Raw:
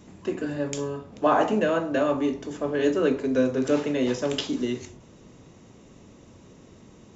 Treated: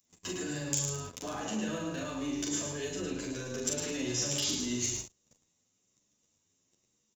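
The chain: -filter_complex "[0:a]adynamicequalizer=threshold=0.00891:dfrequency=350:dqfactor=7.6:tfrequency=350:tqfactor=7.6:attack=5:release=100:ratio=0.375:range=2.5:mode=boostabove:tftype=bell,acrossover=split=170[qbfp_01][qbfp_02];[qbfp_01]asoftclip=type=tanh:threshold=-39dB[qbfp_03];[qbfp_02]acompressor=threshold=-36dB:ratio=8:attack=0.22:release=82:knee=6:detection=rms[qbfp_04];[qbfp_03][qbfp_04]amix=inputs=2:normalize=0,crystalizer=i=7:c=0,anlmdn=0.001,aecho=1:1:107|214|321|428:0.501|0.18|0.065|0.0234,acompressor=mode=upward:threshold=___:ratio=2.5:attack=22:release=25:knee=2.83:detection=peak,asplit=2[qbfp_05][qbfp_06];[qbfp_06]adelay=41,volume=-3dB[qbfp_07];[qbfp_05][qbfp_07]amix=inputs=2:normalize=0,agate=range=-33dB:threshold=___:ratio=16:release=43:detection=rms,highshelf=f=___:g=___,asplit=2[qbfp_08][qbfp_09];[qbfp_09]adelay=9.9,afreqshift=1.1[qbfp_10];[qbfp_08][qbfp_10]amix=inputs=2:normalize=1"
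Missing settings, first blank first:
-52dB, -40dB, 5400, 10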